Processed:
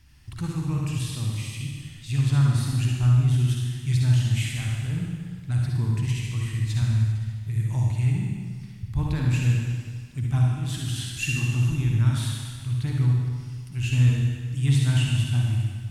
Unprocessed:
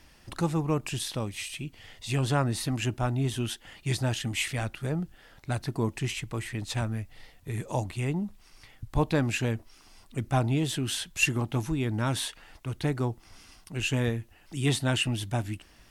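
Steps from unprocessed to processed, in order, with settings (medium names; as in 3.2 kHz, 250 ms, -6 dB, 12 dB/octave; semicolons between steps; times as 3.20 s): peaking EQ 530 Hz -14 dB 1.5 oct; 10.43–11.11 s: compressor with a negative ratio -35 dBFS, ratio -1; peaking EQ 90 Hz +14.5 dB 1.6 oct; reverberation RT60 1.7 s, pre-delay 50 ms, DRR -2 dB; trim -5 dB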